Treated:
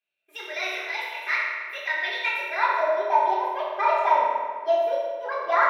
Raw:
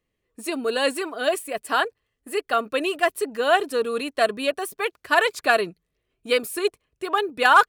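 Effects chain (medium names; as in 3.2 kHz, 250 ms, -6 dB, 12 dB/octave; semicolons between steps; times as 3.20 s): band-pass sweep 1.7 kHz -> 630 Hz, 3.16–3.89 s; FDN reverb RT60 2.3 s, low-frequency decay 1.1×, high-frequency decay 0.6×, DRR -9 dB; speed mistake 33 rpm record played at 45 rpm; trim -5 dB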